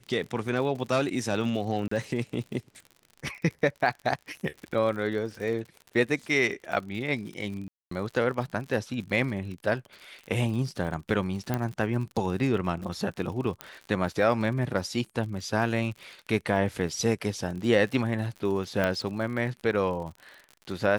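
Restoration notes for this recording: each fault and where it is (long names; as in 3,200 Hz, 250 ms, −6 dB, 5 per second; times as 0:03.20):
surface crackle 61 per second −36 dBFS
0:01.88–0:01.91: drop-out 34 ms
0:07.68–0:07.91: drop-out 234 ms
0:11.54: click −14 dBFS
0:13.61: click −17 dBFS
0:18.84: click −13 dBFS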